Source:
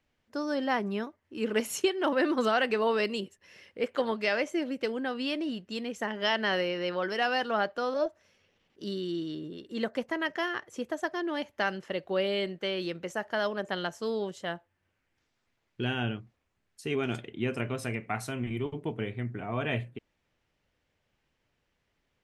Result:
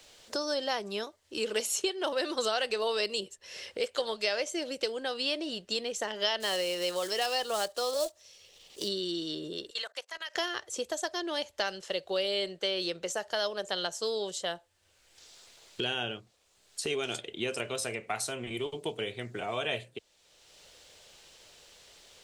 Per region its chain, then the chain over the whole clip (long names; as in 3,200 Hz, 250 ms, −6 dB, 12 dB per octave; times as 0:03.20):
0:06.40–0:08.90: one scale factor per block 5 bits + notch filter 1,500 Hz, Q 8.9
0:09.70–0:10.35: high-pass filter 1,300 Hz + output level in coarse steps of 23 dB
whole clip: graphic EQ with 10 bands 125 Hz −9 dB, 250 Hz −12 dB, 500 Hz +3 dB, 1,000 Hz −3 dB, 2,000 Hz −6 dB, 4,000 Hz +8 dB, 8,000 Hz +11 dB; multiband upward and downward compressor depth 70%